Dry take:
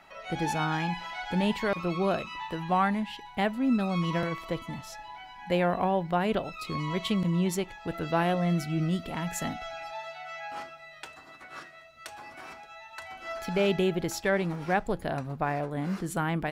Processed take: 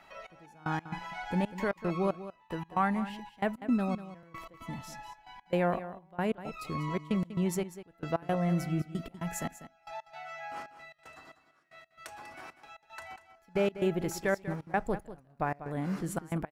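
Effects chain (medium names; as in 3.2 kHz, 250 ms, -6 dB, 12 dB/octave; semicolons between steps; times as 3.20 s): dynamic bell 3.7 kHz, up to -8 dB, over -52 dBFS, Q 1.3; trance gate "xx...x.xxxx.x." 114 bpm -24 dB; delay 194 ms -13.5 dB; trim -2 dB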